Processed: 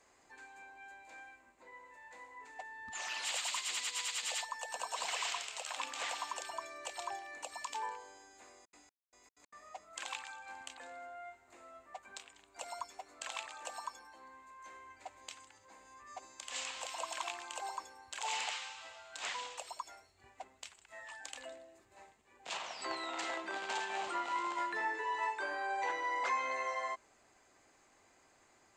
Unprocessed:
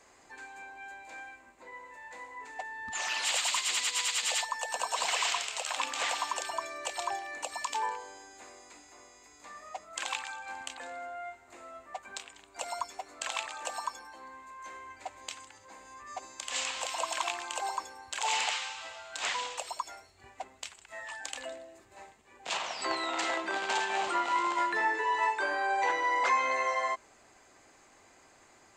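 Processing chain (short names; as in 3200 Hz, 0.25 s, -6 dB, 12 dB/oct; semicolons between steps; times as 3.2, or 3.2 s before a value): 8.6–9.63 step gate "xx...xx.x." 189 bpm -60 dB; gain -7.5 dB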